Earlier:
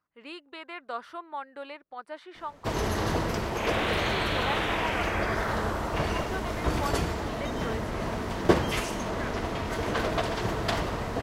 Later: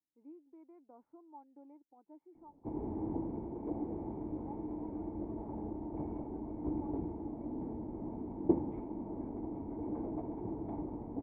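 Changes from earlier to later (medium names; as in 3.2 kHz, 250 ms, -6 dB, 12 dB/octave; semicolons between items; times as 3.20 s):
speech -4.5 dB; second sound -12.0 dB; master: add cascade formant filter u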